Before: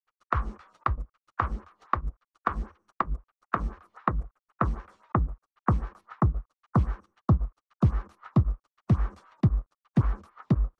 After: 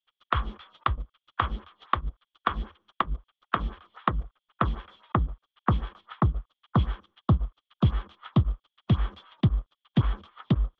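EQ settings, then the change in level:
low-pass with resonance 3,300 Hz, resonance Q 15
0.0 dB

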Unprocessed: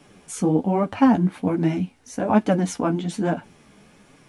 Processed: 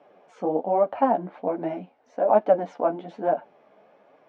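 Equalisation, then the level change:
resonant band-pass 620 Hz, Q 3.1
high-frequency loss of the air 190 metres
spectral tilt +2.5 dB per octave
+9.0 dB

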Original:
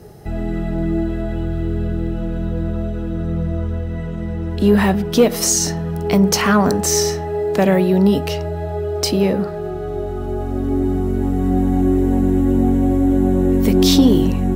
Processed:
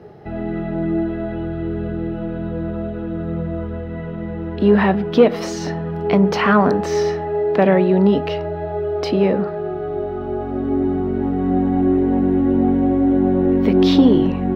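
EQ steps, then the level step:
high-pass filter 260 Hz 6 dB per octave
high-frequency loss of the air 340 metres
+3.5 dB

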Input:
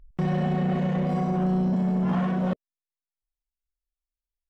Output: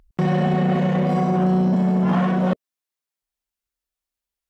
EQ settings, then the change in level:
high-pass filter 150 Hz 6 dB per octave
+7.5 dB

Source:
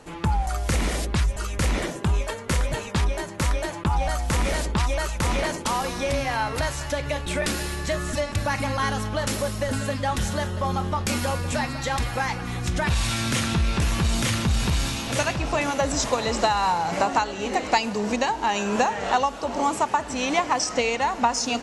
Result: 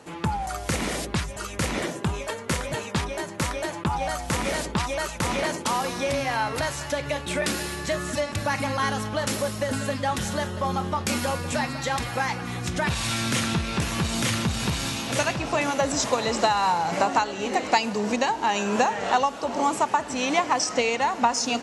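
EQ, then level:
high-pass filter 110 Hz 12 dB per octave
0.0 dB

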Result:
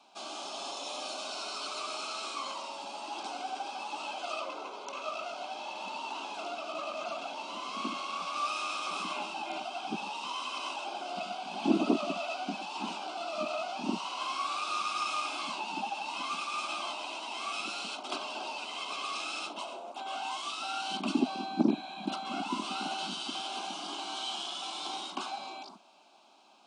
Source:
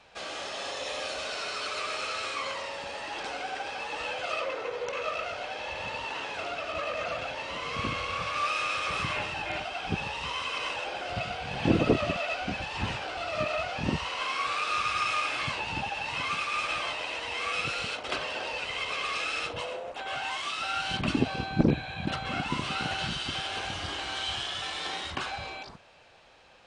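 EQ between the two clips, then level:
Butterworth high-pass 180 Hz 48 dB per octave
phaser with its sweep stopped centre 490 Hz, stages 6
0.0 dB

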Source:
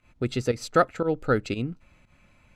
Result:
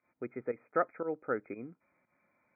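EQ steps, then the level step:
high-pass filter 310 Hz 12 dB per octave
linear-phase brick-wall low-pass 2,500 Hz
high-frequency loss of the air 270 metres
−8.0 dB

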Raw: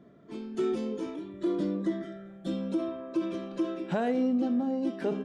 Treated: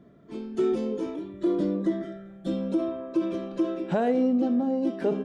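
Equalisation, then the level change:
low-shelf EQ 110 Hz +8 dB
dynamic equaliser 520 Hz, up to +5 dB, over −42 dBFS, Q 0.79
0.0 dB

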